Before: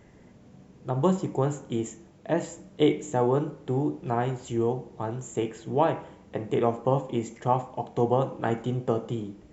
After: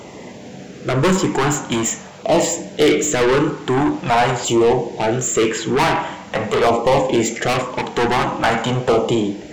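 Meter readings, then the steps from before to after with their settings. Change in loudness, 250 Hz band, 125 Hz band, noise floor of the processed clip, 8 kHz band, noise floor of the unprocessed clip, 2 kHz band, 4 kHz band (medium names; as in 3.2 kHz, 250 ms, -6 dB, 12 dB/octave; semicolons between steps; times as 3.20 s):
+10.5 dB, +9.5 dB, +6.0 dB, -37 dBFS, no reading, -54 dBFS, +20.0 dB, +19.0 dB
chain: overdrive pedal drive 29 dB, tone 6.9 kHz, clips at -9 dBFS; LFO notch saw down 0.45 Hz 290–1800 Hz; trim +3.5 dB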